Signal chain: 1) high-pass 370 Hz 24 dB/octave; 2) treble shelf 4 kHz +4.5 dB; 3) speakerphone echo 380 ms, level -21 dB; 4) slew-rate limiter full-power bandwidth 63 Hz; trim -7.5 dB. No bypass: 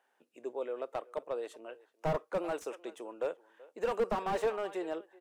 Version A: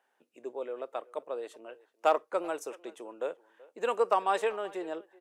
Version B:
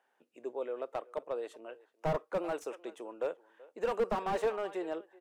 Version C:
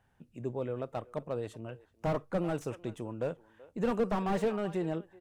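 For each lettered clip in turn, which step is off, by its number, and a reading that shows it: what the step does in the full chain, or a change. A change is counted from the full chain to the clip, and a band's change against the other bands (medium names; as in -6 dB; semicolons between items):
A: 4, distortion 0 dB; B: 2, 8 kHz band -1.5 dB; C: 1, 125 Hz band +10.0 dB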